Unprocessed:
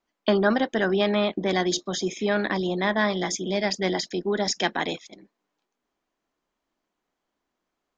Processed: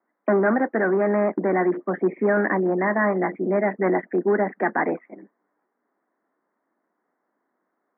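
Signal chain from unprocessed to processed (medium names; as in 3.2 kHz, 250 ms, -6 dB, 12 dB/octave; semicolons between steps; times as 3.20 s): in parallel at -0.5 dB: wavefolder -20 dBFS; on the sum: high-pass 200 Hz 24 dB/octave; gain riding 0.5 s; steep low-pass 2 kHz 72 dB/octave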